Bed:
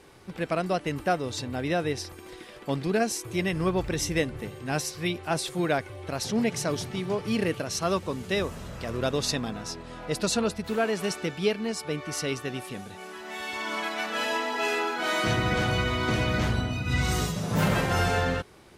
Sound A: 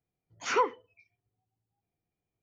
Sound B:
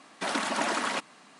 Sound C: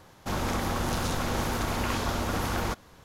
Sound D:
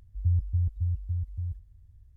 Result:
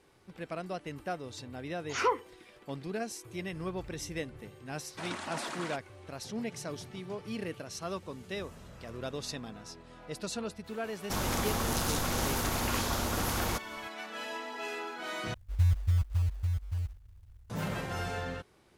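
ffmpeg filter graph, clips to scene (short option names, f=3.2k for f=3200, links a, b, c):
-filter_complex "[0:a]volume=-11dB[a];[2:a]aresample=22050,aresample=44100[b];[3:a]aemphasis=mode=production:type=cd[c];[4:a]acrusher=bits=6:mode=log:mix=0:aa=0.000001[d];[a]asplit=2[e][f];[e]atrim=end=15.344[g];[d]atrim=end=2.16,asetpts=PTS-STARTPTS,volume=-0.5dB[h];[f]atrim=start=17.496[i];[1:a]atrim=end=2.42,asetpts=PTS-STARTPTS,volume=-2dB,afade=t=in:d=0.004:c=hsin,afade=t=out:st=2.416:d=0.004:c=hsin,adelay=1480[j];[b]atrim=end=1.39,asetpts=PTS-STARTPTS,volume=-10.5dB,afade=t=in:d=0.004:c=hsin,afade=t=out:st=1.386:d=0.004:c=hsin,adelay=4760[k];[c]atrim=end=3.04,asetpts=PTS-STARTPTS,volume=-3dB,afade=t=in:d=0.004:c=hsin,afade=t=out:st=3.036:d=0.004:c=hsin,adelay=10840[l];[g][h]acrossfade=d=0.004:c1=hsin:c2=hsin[m];[m][i]acrossfade=d=0.004:c1=hsin:c2=hsin[n];[n][j][k][l]amix=inputs=4:normalize=0"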